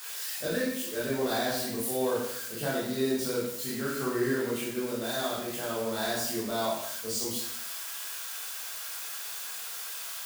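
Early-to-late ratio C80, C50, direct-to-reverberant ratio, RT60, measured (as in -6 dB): 4.5 dB, 1.5 dB, -7.5 dB, 0.80 s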